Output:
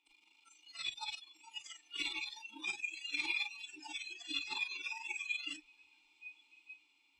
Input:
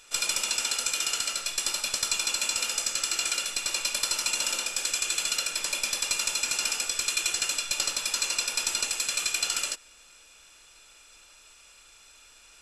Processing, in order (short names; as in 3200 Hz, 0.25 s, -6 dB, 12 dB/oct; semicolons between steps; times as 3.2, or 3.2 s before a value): negative-ratio compressor -37 dBFS, ratio -1; granular stretch 0.57×, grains 37 ms; backlash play -48.5 dBFS; vowel filter u; bell 3700 Hz +13 dB 1.1 oct; notches 60/120/180/240/300 Hz; on a send: diffused feedback echo 1.262 s, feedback 53%, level -4.5 dB; on the sum: spectral noise reduction 29 dB; bell 8400 Hz +6 dB 0.52 oct; gain +11.5 dB